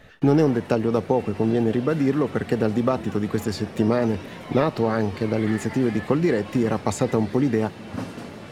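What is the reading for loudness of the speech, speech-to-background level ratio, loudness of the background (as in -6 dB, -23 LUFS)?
-23.0 LUFS, 14.5 dB, -37.5 LUFS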